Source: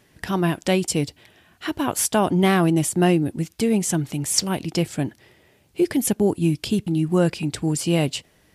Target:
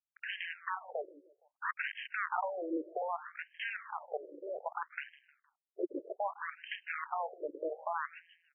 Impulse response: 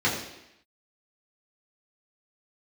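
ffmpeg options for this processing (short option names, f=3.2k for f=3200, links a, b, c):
-af "highpass=f=85:p=1,equalizer=f=2.7k:t=o:w=1.1:g=-11,acompressor=threshold=-31dB:ratio=10,acrusher=bits=6:mix=0:aa=0.5,aeval=exprs='(mod(26.6*val(0)+1,2)-1)/26.6':c=same,aecho=1:1:155|310|465:0.119|0.0499|0.021,afftfilt=real='re*between(b*sr/1024,420*pow(2300/420,0.5+0.5*sin(2*PI*0.63*pts/sr))/1.41,420*pow(2300/420,0.5+0.5*sin(2*PI*0.63*pts/sr))*1.41)':imag='im*between(b*sr/1024,420*pow(2300/420,0.5+0.5*sin(2*PI*0.63*pts/sr))/1.41,420*pow(2300/420,0.5+0.5*sin(2*PI*0.63*pts/sr))*1.41)':win_size=1024:overlap=0.75,volume=5.5dB"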